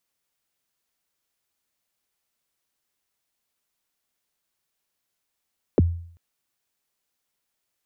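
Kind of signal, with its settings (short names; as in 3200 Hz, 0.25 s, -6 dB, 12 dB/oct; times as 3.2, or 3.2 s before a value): kick drum length 0.39 s, from 560 Hz, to 85 Hz, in 25 ms, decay 0.57 s, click off, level -11 dB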